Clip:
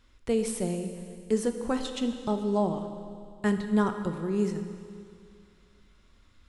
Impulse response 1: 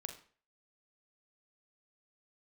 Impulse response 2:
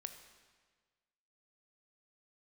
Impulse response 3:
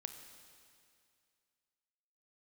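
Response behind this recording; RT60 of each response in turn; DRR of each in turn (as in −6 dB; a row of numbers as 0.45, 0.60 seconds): 3; 0.45, 1.5, 2.3 seconds; 5.0, 7.5, 7.0 decibels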